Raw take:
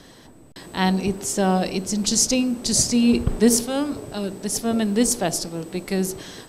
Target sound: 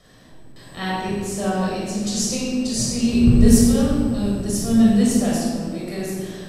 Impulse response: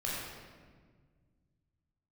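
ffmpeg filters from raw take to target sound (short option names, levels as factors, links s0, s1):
-filter_complex "[0:a]asettb=1/sr,asplit=3[s0][s1][s2];[s0]atrim=end=2.994[s3];[s1]atrim=start=2.99:end=5.03,asetpts=PTS-STARTPTS,afade=t=in:d=0.004:c=qsin,afade=t=out:st=2.036:d=0.004:c=qsin,bass=f=250:g=10,treble=f=4000:g=4[s4];[s2]atrim=start=5.026[s5];[s3][s4]acrossfade=d=0.004:c1=hsin:c2=qsin[s6];[s6][s5]acrossfade=d=0.004:c1=qsin:c2=hsin[s7];[1:a]atrim=start_sample=2205[s8];[s7][s8]afir=irnorm=-1:irlink=0,volume=0.473"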